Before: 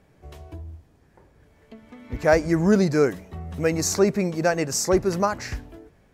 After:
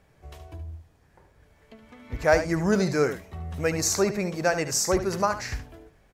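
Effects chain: bell 260 Hz -6.5 dB 1.9 oct; on a send: echo 73 ms -10.5 dB

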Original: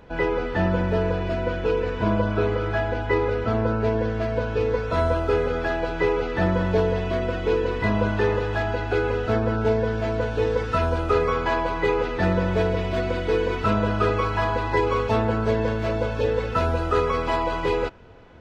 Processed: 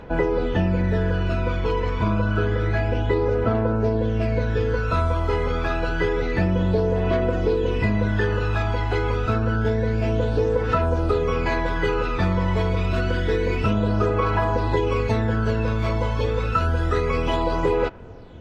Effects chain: phaser 0.28 Hz, delay 1 ms, feedback 53%; compressor, threshold -19 dBFS, peak gain reduction 7.5 dB; gain +2 dB

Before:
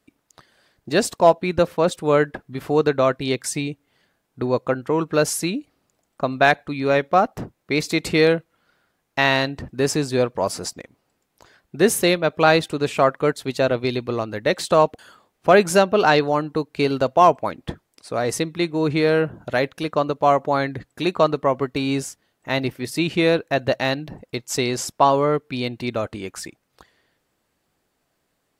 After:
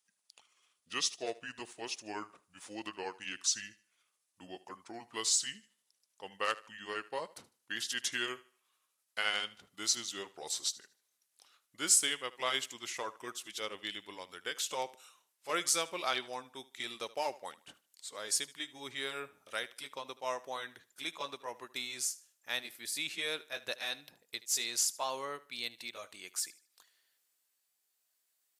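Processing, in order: gliding pitch shift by -6.5 st ending unshifted; differentiator; thinning echo 76 ms, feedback 31%, high-pass 150 Hz, level -19 dB

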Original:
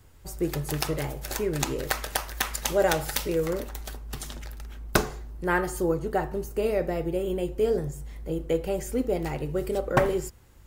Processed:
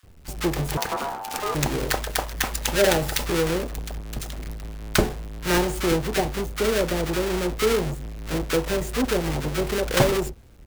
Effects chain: half-waves squared off; bands offset in time highs, lows 30 ms, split 1100 Hz; 0.77–1.55 ring modulator 830 Hz

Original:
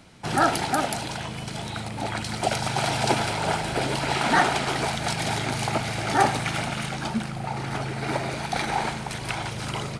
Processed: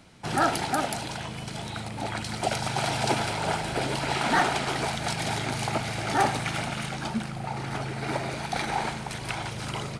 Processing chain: hard clip -12.5 dBFS, distortion -23 dB; gain -2.5 dB

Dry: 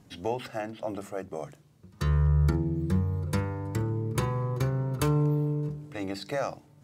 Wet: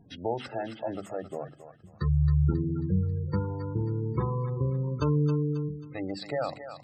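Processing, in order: spectral gate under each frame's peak -20 dB strong; thinning echo 0.27 s, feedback 46%, high-pass 980 Hz, level -6.5 dB

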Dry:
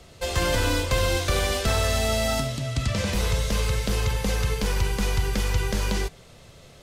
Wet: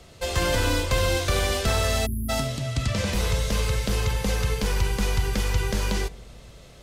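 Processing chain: on a send: darkening echo 84 ms, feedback 82%, low-pass 850 Hz, level -21 dB; on the sum: spectral delete 2.06–2.29, 400–9900 Hz

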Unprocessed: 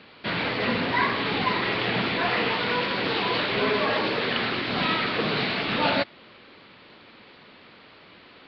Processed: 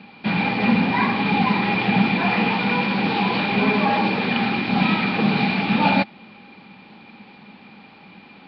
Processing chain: small resonant body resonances 200/810/2400 Hz, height 17 dB, ringing for 50 ms; gain -1.5 dB

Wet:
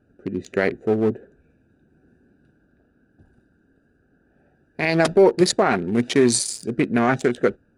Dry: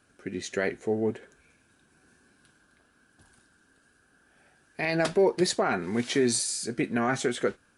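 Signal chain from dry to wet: Wiener smoothing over 41 samples; gain +8.5 dB

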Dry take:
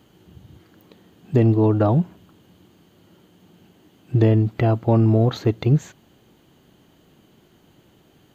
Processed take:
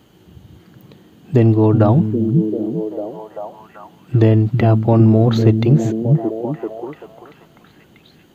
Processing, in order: delay with a stepping band-pass 0.389 s, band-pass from 170 Hz, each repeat 0.7 oct, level -0.5 dB; gain +4 dB

